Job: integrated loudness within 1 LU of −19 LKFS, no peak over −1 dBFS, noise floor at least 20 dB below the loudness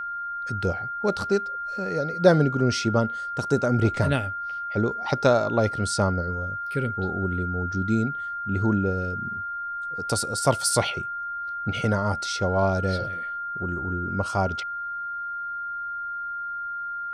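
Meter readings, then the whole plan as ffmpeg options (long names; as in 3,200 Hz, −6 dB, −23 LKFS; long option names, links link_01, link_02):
interfering tone 1,400 Hz; level of the tone −29 dBFS; integrated loudness −26.0 LKFS; sample peak −4.5 dBFS; target loudness −19.0 LKFS
→ -af "bandreject=frequency=1400:width=30"
-af "volume=7dB,alimiter=limit=-1dB:level=0:latency=1"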